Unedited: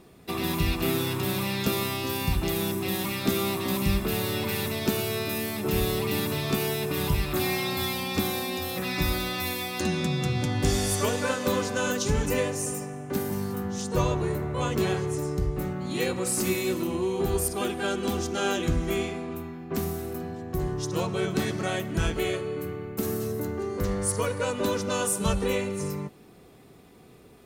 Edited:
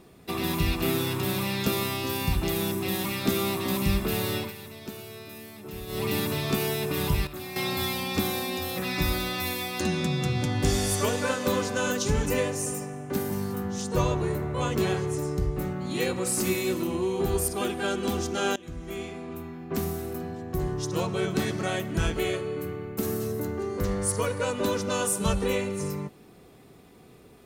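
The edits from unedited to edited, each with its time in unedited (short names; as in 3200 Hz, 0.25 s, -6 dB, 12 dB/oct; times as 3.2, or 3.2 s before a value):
4.36–6.04 dip -13 dB, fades 0.17 s
7.27–7.56 gain -11 dB
18.56–19.64 fade in, from -22 dB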